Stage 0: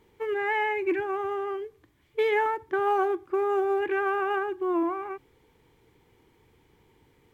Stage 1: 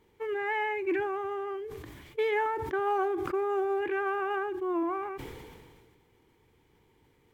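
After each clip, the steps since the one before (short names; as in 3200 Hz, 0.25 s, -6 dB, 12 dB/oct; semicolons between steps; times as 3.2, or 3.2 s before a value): sustainer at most 31 dB/s; gain -4 dB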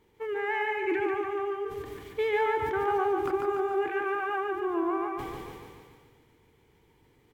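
feedback echo 0.145 s, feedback 55%, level -4 dB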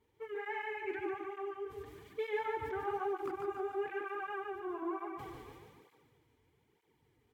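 tape flanging out of phase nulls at 1.1 Hz, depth 6.3 ms; gain -7 dB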